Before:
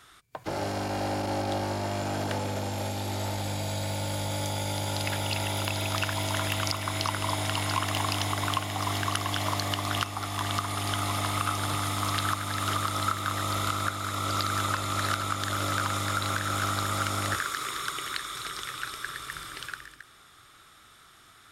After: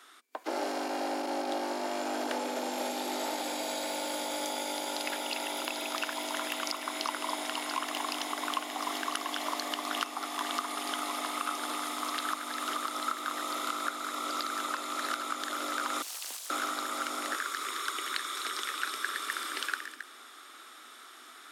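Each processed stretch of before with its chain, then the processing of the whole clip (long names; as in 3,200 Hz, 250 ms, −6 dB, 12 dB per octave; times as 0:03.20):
0:16.02–0:16.50: first difference + phaser with its sweep stopped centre 690 Hz, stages 4 + highs frequency-modulated by the lows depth 0.71 ms
whole clip: Chebyshev high-pass filter 240 Hz, order 6; speech leveller 0.5 s; level −2.5 dB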